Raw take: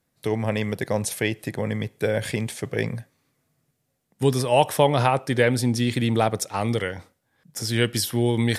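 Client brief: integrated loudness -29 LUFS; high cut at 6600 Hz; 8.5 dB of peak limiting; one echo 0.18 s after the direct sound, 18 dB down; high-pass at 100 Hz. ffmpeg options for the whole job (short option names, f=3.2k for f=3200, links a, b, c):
-af "highpass=100,lowpass=6.6k,alimiter=limit=-12.5dB:level=0:latency=1,aecho=1:1:180:0.126,volume=-3dB"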